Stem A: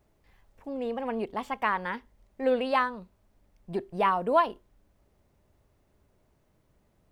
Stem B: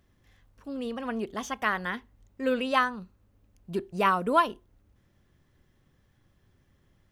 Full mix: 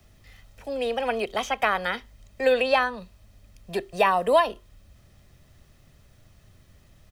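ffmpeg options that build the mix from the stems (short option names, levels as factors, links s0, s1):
-filter_complex "[0:a]equalizer=f=3100:w=0.42:g=10,aecho=1:1:1.6:0.53,volume=1.06[s0];[1:a]lowshelf=f=200:g=11.5,adelay=0.9,volume=1.12[s1];[s0][s1]amix=inputs=2:normalize=0,highshelf=f=3100:g=8.5,acrossover=split=110|310|1200|3400[s2][s3][s4][s5][s6];[s2]acompressor=threshold=0.00355:ratio=4[s7];[s3]acompressor=threshold=0.00398:ratio=4[s8];[s4]acompressor=threshold=0.141:ratio=4[s9];[s5]acompressor=threshold=0.0398:ratio=4[s10];[s6]acompressor=threshold=0.00891:ratio=4[s11];[s7][s8][s9][s10][s11]amix=inputs=5:normalize=0"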